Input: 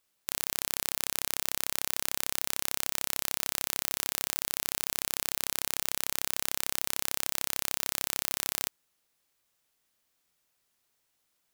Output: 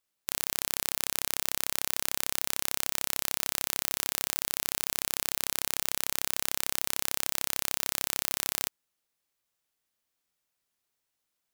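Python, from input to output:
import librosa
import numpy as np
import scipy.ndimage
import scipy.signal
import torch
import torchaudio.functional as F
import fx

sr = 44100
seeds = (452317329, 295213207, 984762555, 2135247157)

y = fx.upward_expand(x, sr, threshold_db=-48.0, expansion=1.5)
y = y * librosa.db_to_amplitude(2.5)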